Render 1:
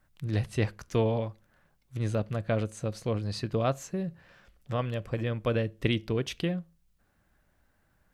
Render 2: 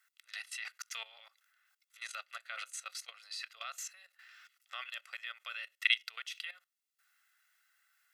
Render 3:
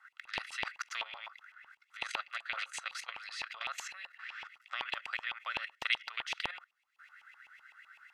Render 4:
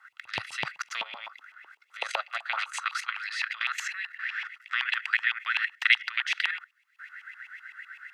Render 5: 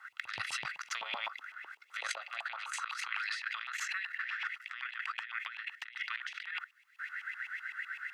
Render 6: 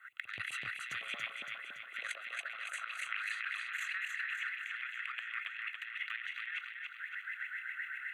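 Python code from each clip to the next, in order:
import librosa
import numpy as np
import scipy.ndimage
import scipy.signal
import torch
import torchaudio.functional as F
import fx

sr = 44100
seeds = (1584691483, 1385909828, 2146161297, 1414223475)

y1 = scipy.signal.sosfilt(scipy.signal.butter(4, 1500.0, 'highpass', fs=sr, output='sos'), x)
y1 = y1 + 0.67 * np.pad(y1, (int(1.5 * sr / 1000.0), 0))[:len(y1)]
y1 = fx.level_steps(y1, sr, step_db=16)
y1 = y1 * 10.0 ** (6.0 / 20.0)
y2 = fx.filter_lfo_bandpass(y1, sr, shape='saw_up', hz=7.9, low_hz=860.0, high_hz=2800.0, q=6.0)
y2 = fx.spectral_comp(y2, sr, ratio=2.0)
y2 = y2 * 10.0 ** (7.5 / 20.0)
y3 = fx.filter_sweep_highpass(y2, sr, from_hz=95.0, to_hz=1700.0, start_s=0.26, end_s=3.27, q=3.1)
y3 = y3 * 10.0 ** (5.0 / 20.0)
y4 = fx.over_compress(y3, sr, threshold_db=-38.0, ratio=-1.0)
y4 = y4 * 10.0 ** (-2.5 / 20.0)
y5 = fx.fixed_phaser(y4, sr, hz=2200.0, stages=4)
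y5 = fx.echo_feedback(y5, sr, ms=282, feedback_pct=55, wet_db=-4)
y5 = y5 * 10.0 ** (-1.0 / 20.0)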